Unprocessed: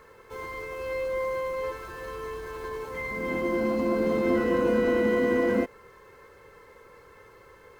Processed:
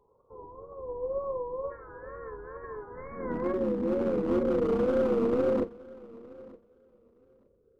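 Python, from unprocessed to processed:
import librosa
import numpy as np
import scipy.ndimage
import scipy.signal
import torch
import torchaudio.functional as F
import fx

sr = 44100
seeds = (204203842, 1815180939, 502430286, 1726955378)

y = fx.tracing_dist(x, sr, depth_ms=0.079)
y = fx.steep_lowpass(y, sr, hz=fx.steps((0.0, 1100.0), (1.7, 1800.0), (3.52, 590.0)), slope=72)
y = fx.wow_flutter(y, sr, seeds[0], rate_hz=2.1, depth_cents=120.0)
y = np.clip(y, -10.0 ** (-22.0 / 20.0), 10.0 ** (-22.0 / 20.0))
y = fx.doubler(y, sr, ms=42.0, db=-10.5)
y = fx.echo_feedback(y, sr, ms=917, feedback_pct=27, wet_db=-14.5)
y = fx.upward_expand(y, sr, threshold_db=-49.0, expansion=1.5)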